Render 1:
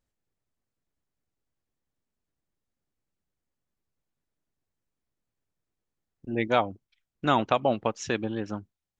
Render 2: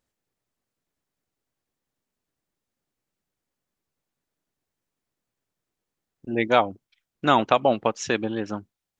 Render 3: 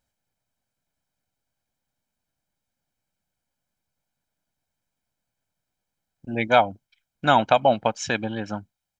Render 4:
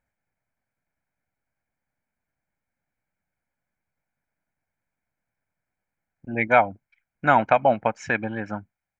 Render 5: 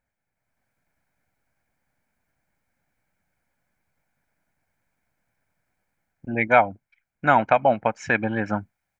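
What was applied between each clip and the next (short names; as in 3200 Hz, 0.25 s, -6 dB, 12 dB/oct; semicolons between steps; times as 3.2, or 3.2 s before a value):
low shelf 120 Hz -10 dB; gain +5 dB
comb 1.3 ms, depth 58%
resonant high shelf 2700 Hz -8.5 dB, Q 3; gain -1 dB
AGC gain up to 9.5 dB; gain -1 dB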